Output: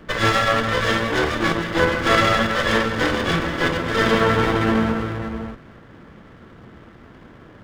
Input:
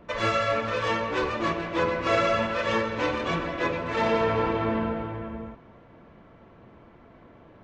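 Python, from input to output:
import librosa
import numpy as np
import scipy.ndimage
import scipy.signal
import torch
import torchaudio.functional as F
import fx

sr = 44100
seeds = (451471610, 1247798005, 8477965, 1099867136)

y = fx.lower_of_two(x, sr, delay_ms=0.6)
y = y * 10.0 ** (8.5 / 20.0)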